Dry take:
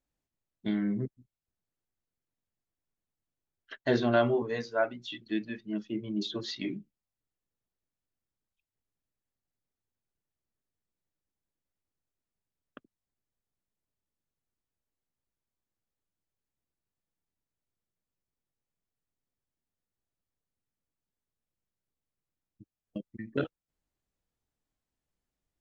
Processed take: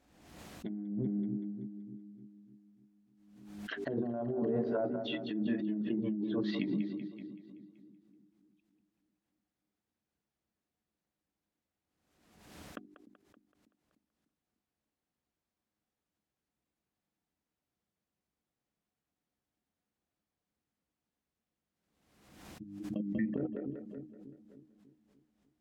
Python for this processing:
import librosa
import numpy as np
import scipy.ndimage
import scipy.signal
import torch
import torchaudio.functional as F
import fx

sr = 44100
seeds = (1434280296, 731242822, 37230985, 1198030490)

p1 = fx.env_lowpass_down(x, sr, base_hz=510.0, full_db=-28.5)
p2 = fx.lowpass(p1, sr, hz=3500.0, slope=6)
p3 = fx.small_body(p2, sr, hz=(210.0, 300.0, 730.0), ring_ms=95, db=7)
p4 = p3 + fx.echo_split(p3, sr, split_hz=340.0, low_ms=298, high_ms=190, feedback_pct=52, wet_db=-13.0, dry=0)
p5 = fx.over_compress(p4, sr, threshold_db=-33.0, ratio=-1.0)
p6 = scipy.signal.sosfilt(scipy.signal.butter(2, 57.0, 'highpass', fs=sr, output='sos'), p5)
p7 = fx.peak_eq(p6, sr, hz=110.0, db=-10.5, octaves=0.2)
p8 = fx.hum_notches(p7, sr, base_hz=50, count=8)
y = fx.pre_swell(p8, sr, db_per_s=52.0)